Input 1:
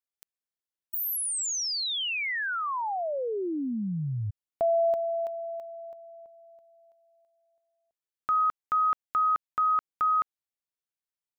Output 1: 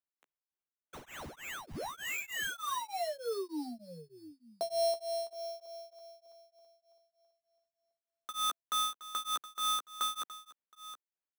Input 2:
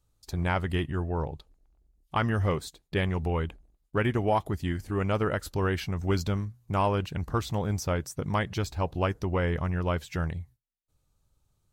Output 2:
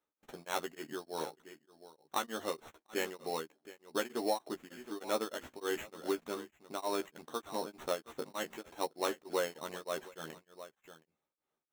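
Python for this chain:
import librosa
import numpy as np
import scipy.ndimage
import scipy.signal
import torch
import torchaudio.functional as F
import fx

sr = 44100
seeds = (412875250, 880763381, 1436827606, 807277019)

p1 = scipy.signal.sosfilt(scipy.signal.butter(4, 270.0, 'highpass', fs=sr, output='sos'), x)
p2 = fx.high_shelf(p1, sr, hz=4900.0, db=-11.5)
p3 = fx.sample_hold(p2, sr, seeds[0], rate_hz=4800.0, jitter_pct=0)
p4 = fx.doubler(p3, sr, ms=13.0, db=-5.0)
p5 = p4 + fx.echo_single(p4, sr, ms=719, db=-15.5, dry=0)
p6 = p5 * np.abs(np.cos(np.pi * 3.3 * np.arange(len(p5)) / sr))
y = F.gain(torch.from_numpy(p6), -4.5).numpy()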